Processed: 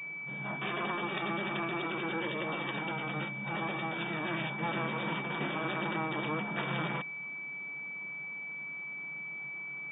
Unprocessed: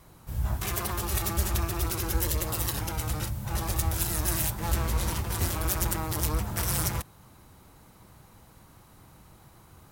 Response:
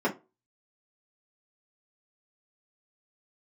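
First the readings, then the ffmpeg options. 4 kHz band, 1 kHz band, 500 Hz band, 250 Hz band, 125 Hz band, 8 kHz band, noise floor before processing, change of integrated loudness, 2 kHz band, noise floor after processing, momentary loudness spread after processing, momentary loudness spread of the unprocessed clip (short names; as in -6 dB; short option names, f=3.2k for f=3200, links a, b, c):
-4.5 dB, 0.0 dB, 0.0 dB, 0.0 dB, -11.5 dB, under -40 dB, -55 dBFS, -6.0 dB, +6.0 dB, -41 dBFS, 5 LU, 5 LU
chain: -af "afftfilt=real='re*between(b*sr/4096,130,3700)':imag='im*between(b*sr/4096,130,3700)':win_size=4096:overlap=0.75,aeval=exprs='val(0)+0.0126*sin(2*PI*2300*n/s)':c=same,bandreject=f=2.1k:w=17"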